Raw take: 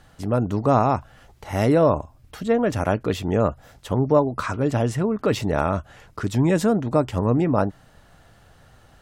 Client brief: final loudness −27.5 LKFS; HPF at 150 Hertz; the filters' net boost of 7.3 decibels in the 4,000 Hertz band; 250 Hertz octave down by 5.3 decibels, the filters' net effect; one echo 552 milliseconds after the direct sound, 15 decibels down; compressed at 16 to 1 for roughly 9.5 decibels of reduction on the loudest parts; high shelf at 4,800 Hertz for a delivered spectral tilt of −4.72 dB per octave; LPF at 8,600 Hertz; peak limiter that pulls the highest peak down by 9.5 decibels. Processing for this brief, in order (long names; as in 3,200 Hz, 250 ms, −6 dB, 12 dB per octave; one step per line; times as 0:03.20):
high-pass filter 150 Hz
low-pass filter 8,600 Hz
parametric band 250 Hz −6 dB
parametric band 4,000 Hz +5.5 dB
high-shelf EQ 4,800 Hz +8 dB
downward compressor 16 to 1, threshold −22 dBFS
brickwall limiter −20 dBFS
single-tap delay 552 ms −15 dB
level +4.5 dB